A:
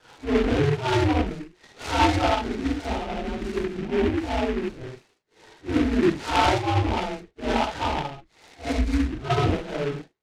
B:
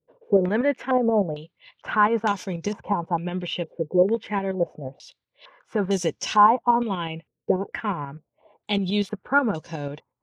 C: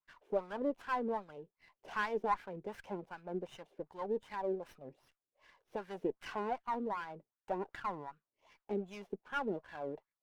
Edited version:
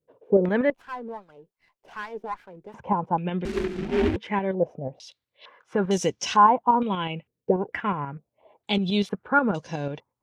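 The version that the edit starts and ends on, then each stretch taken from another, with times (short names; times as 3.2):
B
0.7–2.74 from C
3.45–4.16 from A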